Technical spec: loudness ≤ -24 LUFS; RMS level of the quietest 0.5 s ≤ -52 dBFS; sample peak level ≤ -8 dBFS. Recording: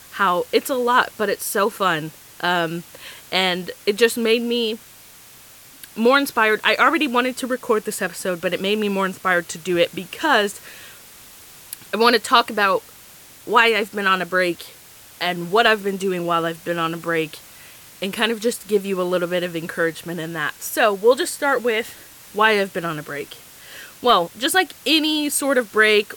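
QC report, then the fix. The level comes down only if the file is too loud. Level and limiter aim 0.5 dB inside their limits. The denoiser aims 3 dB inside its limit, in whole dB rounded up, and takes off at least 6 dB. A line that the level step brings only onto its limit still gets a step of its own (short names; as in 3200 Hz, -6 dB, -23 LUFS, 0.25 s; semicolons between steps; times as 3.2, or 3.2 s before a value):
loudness -20.0 LUFS: fail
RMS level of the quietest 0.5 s -45 dBFS: fail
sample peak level -2.5 dBFS: fail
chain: denoiser 6 dB, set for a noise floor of -45 dBFS; gain -4.5 dB; limiter -8.5 dBFS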